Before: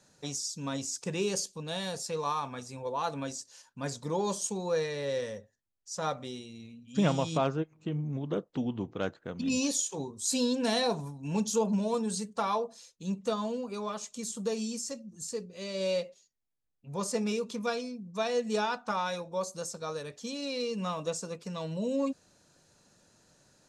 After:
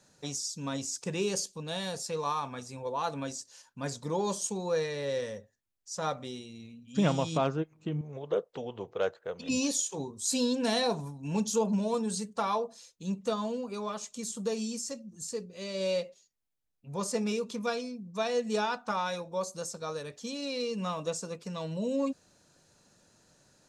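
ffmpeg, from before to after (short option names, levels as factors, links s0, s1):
-filter_complex "[0:a]asettb=1/sr,asplit=3[s0][s1][s2];[s0]atrim=end=8.014[s3];[s1]atrim=start=8.01:end=9.49,asetpts=PTS-STARTPTS,afade=t=in:d=0.004:c=qsin,afade=t=out:st=1.476:d=0.004:c=qsin,lowshelf=f=360:t=q:w=3:g=-8[s4];[s2]atrim=start=9.486[s5];[s3][s4]acrossfade=d=0.004:c1=hsin:c2=qsin[s6];[s6][s5]acrossfade=d=0.004:c1=qsin:c2=hsin"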